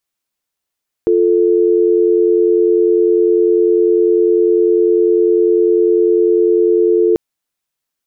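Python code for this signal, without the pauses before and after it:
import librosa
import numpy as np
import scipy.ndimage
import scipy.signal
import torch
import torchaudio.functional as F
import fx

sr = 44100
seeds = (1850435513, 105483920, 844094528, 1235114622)

y = fx.call_progress(sr, length_s=6.09, kind='dial tone', level_db=-11.5)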